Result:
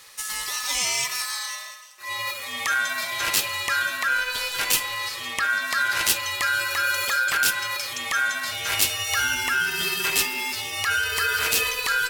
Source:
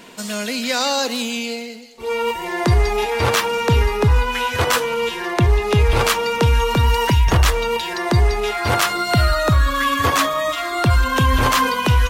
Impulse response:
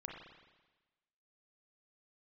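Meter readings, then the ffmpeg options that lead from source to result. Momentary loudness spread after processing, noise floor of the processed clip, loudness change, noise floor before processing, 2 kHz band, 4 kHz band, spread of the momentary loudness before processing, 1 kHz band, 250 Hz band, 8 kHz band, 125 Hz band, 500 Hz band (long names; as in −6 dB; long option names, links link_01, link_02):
7 LU, −37 dBFS, −5.0 dB, −30 dBFS, +1.0 dB, −1.5 dB, 7 LU, −9.0 dB, −20.5 dB, +2.5 dB, −28.0 dB, −18.0 dB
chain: -filter_complex "[0:a]aeval=exprs='val(0)*sin(2*PI*1500*n/s)':channel_layout=same,asplit=2[link_01][link_02];[1:a]atrim=start_sample=2205,asetrate=41013,aresample=44100,lowshelf=frequency=360:gain=-7[link_03];[link_02][link_03]afir=irnorm=-1:irlink=0,volume=-2dB[link_04];[link_01][link_04]amix=inputs=2:normalize=0,crystalizer=i=5.5:c=0,volume=-14.5dB"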